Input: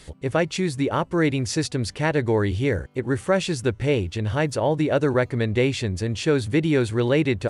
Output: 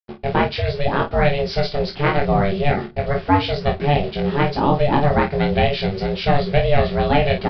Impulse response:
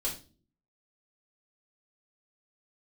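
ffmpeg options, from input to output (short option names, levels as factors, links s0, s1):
-filter_complex "[0:a]agate=range=0.0224:threshold=0.0178:ratio=3:detection=peak,aeval=exprs='val(0)*sin(2*PI*290*n/s)':c=same,acrusher=bits=6:mix=0:aa=0.5,aecho=1:1:22|50:0.668|0.355,asplit=2[s0][s1];[1:a]atrim=start_sample=2205[s2];[s1][s2]afir=irnorm=-1:irlink=0,volume=0.119[s3];[s0][s3]amix=inputs=2:normalize=0,aresample=11025,aresample=44100,volume=1.68"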